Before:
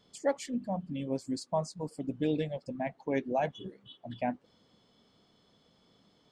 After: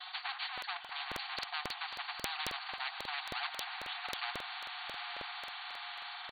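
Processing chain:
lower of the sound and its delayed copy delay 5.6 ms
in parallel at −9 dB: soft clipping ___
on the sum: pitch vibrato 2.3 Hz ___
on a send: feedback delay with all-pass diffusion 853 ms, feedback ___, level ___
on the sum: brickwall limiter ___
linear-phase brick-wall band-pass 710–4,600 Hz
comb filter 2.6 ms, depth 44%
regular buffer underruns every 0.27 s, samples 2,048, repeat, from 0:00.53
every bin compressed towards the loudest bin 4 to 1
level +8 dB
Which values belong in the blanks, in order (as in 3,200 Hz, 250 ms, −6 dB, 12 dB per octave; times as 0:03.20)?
−33 dBFS, 74 cents, 44%, −16 dB, −24 dBFS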